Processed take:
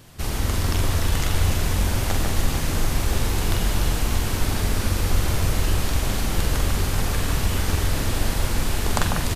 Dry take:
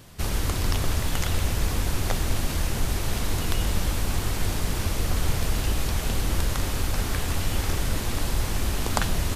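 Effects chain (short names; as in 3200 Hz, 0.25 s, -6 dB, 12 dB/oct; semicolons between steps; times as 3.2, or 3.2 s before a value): doubler 45 ms -5.5 dB; on a send: echo with dull and thin repeats by turns 0.147 s, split 2200 Hz, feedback 81%, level -3.5 dB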